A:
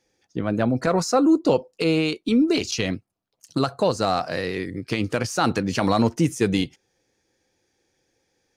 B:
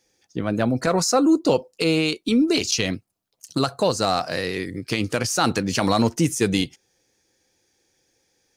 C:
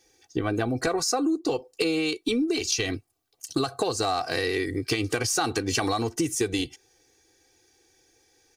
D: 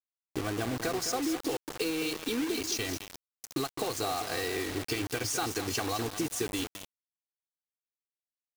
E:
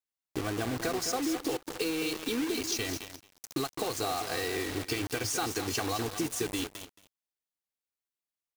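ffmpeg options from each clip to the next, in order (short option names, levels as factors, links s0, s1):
-af "highshelf=f=4000:g=9"
-af "aecho=1:1:2.6:0.78,acompressor=threshold=0.0631:ratio=12,volume=1.26"
-af "aecho=1:1:211|422|633|844:0.316|0.126|0.0506|0.0202,acrusher=bits=4:mix=0:aa=0.000001,volume=0.447"
-af "aecho=1:1:223:0.141"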